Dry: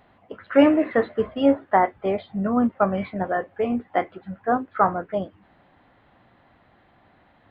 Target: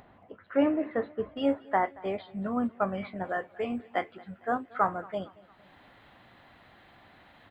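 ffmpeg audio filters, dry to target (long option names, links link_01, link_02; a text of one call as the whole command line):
ffmpeg -i in.wav -af "asetnsamples=nb_out_samples=441:pad=0,asendcmd='1.37 highshelf g 7;3.25 highshelf g 12',highshelf=frequency=2100:gain=-6.5,acompressor=mode=upward:threshold=-38dB:ratio=2.5,aecho=1:1:228|456|684:0.0708|0.0333|0.0156,volume=-9dB" out.wav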